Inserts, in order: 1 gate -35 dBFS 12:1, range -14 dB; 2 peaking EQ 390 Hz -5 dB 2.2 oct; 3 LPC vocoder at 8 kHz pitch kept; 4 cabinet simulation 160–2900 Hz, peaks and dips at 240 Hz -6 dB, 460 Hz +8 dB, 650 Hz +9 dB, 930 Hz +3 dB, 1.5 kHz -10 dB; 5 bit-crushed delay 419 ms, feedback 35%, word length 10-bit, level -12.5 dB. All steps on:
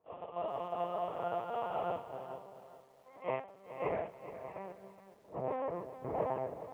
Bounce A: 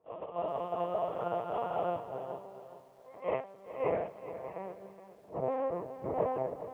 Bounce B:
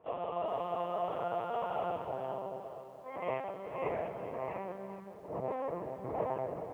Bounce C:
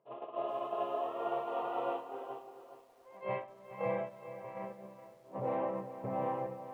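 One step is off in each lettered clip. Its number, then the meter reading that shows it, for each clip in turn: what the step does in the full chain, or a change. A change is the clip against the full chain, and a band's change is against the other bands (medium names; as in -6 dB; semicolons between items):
2, loudness change +3.5 LU; 1, momentary loudness spread change -8 LU; 3, 250 Hz band +2.0 dB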